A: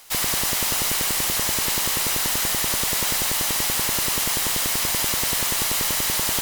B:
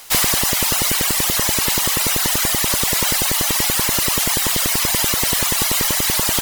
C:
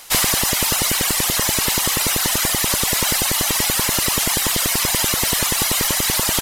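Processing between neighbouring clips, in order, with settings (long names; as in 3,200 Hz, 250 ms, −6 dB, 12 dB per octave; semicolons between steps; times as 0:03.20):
reverb reduction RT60 1.6 s; level +8 dB
downsampling to 32,000 Hz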